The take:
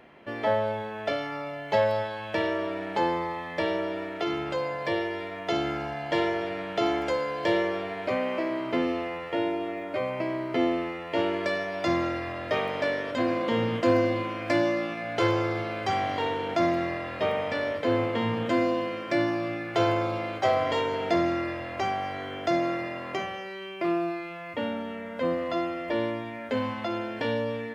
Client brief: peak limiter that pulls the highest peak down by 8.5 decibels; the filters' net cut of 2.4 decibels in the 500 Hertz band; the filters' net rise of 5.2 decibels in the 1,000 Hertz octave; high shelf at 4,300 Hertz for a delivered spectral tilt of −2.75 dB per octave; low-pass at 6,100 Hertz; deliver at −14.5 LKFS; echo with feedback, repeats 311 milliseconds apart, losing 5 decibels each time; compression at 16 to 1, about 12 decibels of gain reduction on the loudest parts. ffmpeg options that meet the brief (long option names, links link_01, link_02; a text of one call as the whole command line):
ffmpeg -i in.wav -af "lowpass=6100,equalizer=frequency=500:width_type=o:gain=-6.5,equalizer=frequency=1000:width_type=o:gain=8.5,highshelf=frequency=4300:gain=7.5,acompressor=threshold=-30dB:ratio=16,alimiter=level_in=2.5dB:limit=-24dB:level=0:latency=1,volume=-2.5dB,aecho=1:1:311|622|933|1244|1555|1866|2177:0.562|0.315|0.176|0.0988|0.0553|0.031|0.0173,volume=19.5dB" out.wav